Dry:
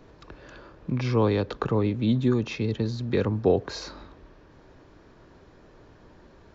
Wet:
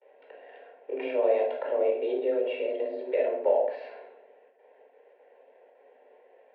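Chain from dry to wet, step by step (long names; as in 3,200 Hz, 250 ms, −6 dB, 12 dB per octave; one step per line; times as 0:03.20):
mu-law and A-law mismatch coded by A
noise gate with hold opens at −50 dBFS
phaser with its sweep stopped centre 450 Hz, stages 4
in parallel at +3 dB: downward compressor, threshold −37 dBFS, peak gain reduction 18 dB
on the sum: single-sideband voice off tune +140 Hz 190–2,600 Hz
convolution reverb RT60 0.65 s, pre-delay 15 ms, DRR −1 dB
every ending faded ahead of time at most 130 dB per second
level −6 dB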